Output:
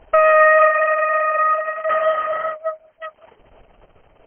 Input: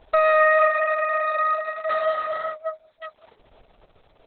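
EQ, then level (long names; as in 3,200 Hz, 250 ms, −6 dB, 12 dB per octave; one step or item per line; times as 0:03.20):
linear-phase brick-wall low-pass 3,200 Hz
+5.0 dB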